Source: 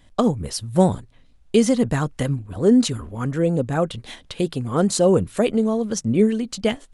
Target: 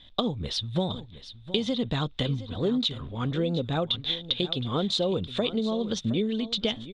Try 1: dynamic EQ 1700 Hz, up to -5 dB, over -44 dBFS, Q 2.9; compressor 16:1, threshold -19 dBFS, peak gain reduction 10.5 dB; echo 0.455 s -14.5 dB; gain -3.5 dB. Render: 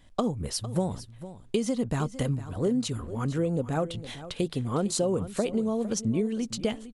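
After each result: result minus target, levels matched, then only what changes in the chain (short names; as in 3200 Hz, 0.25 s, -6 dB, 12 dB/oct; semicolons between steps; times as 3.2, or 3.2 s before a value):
4000 Hz band -10.0 dB; echo 0.262 s early
add after dynamic EQ: synth low-pass 3600 Hz, resonance Q 15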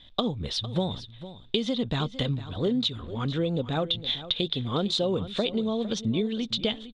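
echo 0.262 s early
change: echo 0.717 s -14.5 dB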